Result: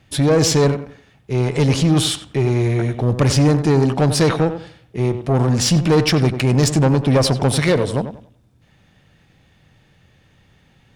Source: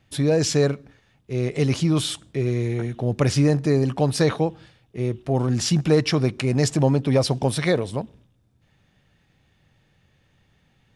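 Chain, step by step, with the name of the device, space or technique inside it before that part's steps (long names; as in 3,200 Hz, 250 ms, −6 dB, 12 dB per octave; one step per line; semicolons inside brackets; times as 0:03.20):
rockabilly slapback (tube saturation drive 18 dB, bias 0.3; tape delay 93 ms, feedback 30%, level −8.5 dB, low-pass 1,800 Hz)
level +8.5 dB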